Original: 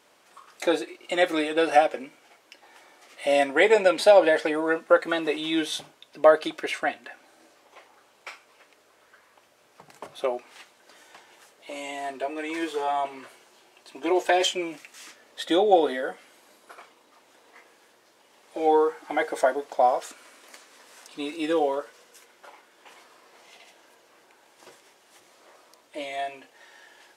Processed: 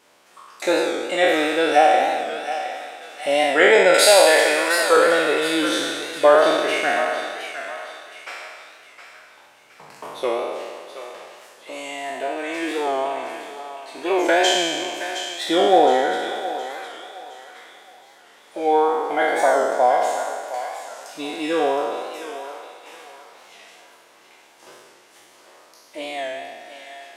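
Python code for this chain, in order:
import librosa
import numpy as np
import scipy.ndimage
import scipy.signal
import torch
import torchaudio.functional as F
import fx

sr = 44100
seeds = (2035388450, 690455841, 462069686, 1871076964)

y = fx.spec_trails(x, sr, decay_s=1.75)
y = fx.riaa(y, sr, side='recording', at=(3.94, 4.97))
y = fx.echo_thinned(y, sr, ms=716, feedback_pct=43, hz=760.0, wet_db=-9.0)
y = fx.record_warp(y, sr, rpm=45.0, depth_cents=100.0)
y = y * librosa.db_to_amplitude(1.0)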